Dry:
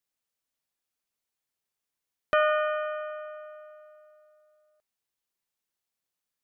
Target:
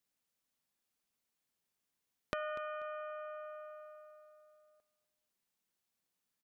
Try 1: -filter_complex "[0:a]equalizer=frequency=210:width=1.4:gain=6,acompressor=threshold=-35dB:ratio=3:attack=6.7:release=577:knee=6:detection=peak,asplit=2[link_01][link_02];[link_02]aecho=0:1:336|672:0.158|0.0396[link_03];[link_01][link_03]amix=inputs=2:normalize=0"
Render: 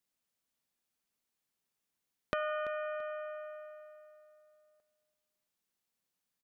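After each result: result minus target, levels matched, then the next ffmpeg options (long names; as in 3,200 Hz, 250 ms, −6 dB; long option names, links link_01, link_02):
echo 93 ms late; downward compressor: peak gain reduction −4.5 dB
-filter_complex "[0:a]equalizer=frequency=210:width=1.4:gain=6,acompressor=threshold=-35dB:ratio=3:attack=6.7:release=577:knee=6:detection=peak,asplit=2[link_01][link_02];[link_02]aecho=0:1:243|486:0.158|0.0396[link_03];[link_01][link_03]amix=inputs=2:normalize=0"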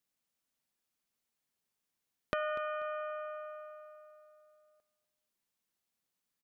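downward compressor: peak gain reduction −4.5 dB
-filter_complex "[0:a]equalizer=frequency=210:width=1.4:gain=6,acompressor=threshold=-42dB:ratio=3:attack=6.7:release=577:knee=6:detection=peak,asplit=2[link_01][link_02];[link_02]aecho=0:1:243|486:0.158|0.0396[link_03];[link_01][link_03]amix=inputs=2:normalize=0"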